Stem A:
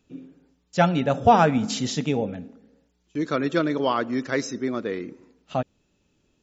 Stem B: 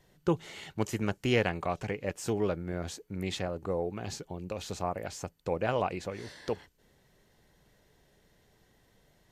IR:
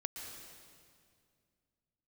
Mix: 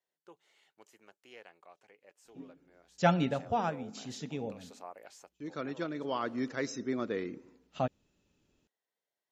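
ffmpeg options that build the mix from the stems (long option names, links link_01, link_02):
-filter_complex "[0:a]adelay=2250,volume=-6dB[link_01];[1:a]highpass=470,volume=-12dB,afade=type=in:start_time=3.22:duration=0.39:silence=0.281838,afade=type=out:start_time=5.17:duration=0.29:silence=0.266073,asplit=2[link_02][link_03];[link_03]apad=whole_len=382430[link_04];[link_01][link_04]sidechaincompress=threshold=-54dB:ratio=8:attack=6:release=1110[link_05];[link_05][link_02]amix=inputs=2:normalize=0"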